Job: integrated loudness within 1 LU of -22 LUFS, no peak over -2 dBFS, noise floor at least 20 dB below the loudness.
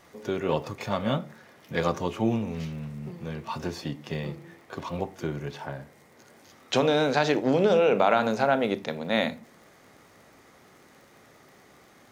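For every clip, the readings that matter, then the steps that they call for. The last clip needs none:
ticks 39/s; loudness -27.0 LUFS; peak -8.0 dBFS; loudness target -22.0 LUFS
-> de-click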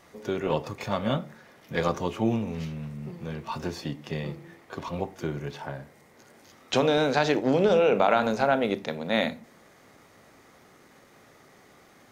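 ticks 0.17/s; loudness -27.5 LUFS; peak -8.0 dBFS; loudness target -22.0 LUFS
-> gain +5.5 dB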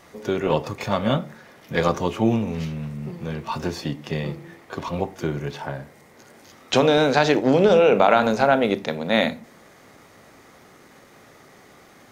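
loudness -22.0 LUFS; peak -2.5 dBFS; noise floor -51 dBFS

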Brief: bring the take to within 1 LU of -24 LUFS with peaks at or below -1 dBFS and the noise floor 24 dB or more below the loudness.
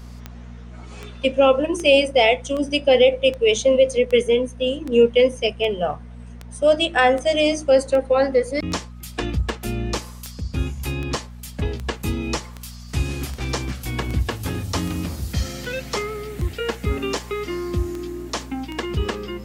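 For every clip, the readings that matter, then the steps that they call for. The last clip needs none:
clicks 25; hum 60 Hz; harmonics up to 240 Hz; hum level -35 dBFS; loudness -21.5 LUFS; peak -3.5 dBFS; loudness target -24.0 LUFS
-> de-click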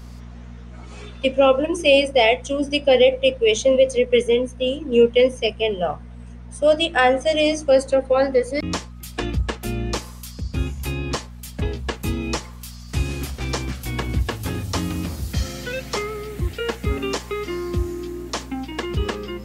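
clicks 0; hum 60 Hz; harmonics up to 240 Hz; hum level -35 dBFS
-> de-hum 60 Hz, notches 4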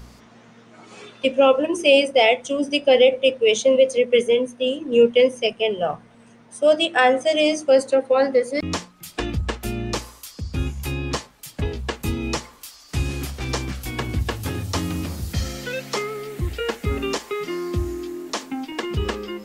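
hum none; loudness -21.5 LUFS; peak -3.5 dBFS; loudness target -24.0 LUFS
-> gain -2.5 dB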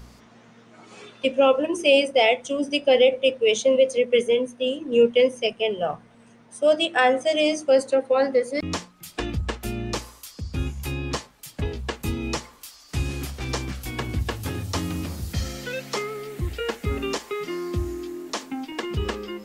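loudness -24.0 LUFS; peak -6.0 dBFS; noise floor -52 dBFS

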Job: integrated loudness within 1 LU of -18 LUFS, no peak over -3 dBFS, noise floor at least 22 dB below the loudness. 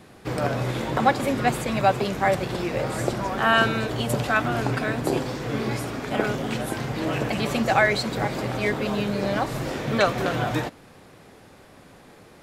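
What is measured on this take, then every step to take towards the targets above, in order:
loudness -24.5 LUFS; peak -5.5 dBFS; loudness target -18.0 LUFS
-> gain +6.5 dB; limiter -3 dBFS

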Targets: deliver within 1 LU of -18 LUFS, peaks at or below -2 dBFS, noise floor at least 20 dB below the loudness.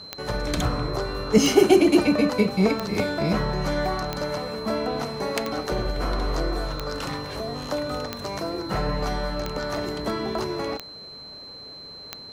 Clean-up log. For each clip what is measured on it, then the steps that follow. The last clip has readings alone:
clicks 10; steady tone 4100 Hz; tone level -39 dBFS; loudness -25.0 LUFS; peak -3.5 dBFS; loudness target -18.0 LUFS
-> de-click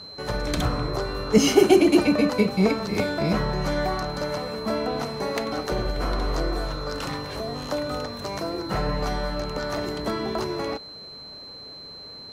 clicks 0; steady tone 4100 Hz; tone level -39 dBFS
-> notch 4100 Hz, Q 30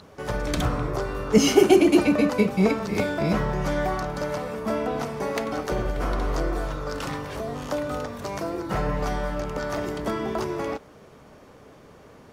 steady tone none; loudness -25.0 LUFS; peak -4.0 dBFS; loudness target -18.0 LUFS
-> gain +7 dB; limiter -2 dBFS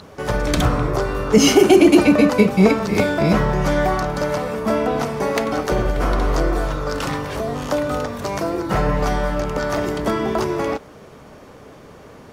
loudness -18.5 LUFS; peak -2.0 dBFS; noise floor -43 dBFS

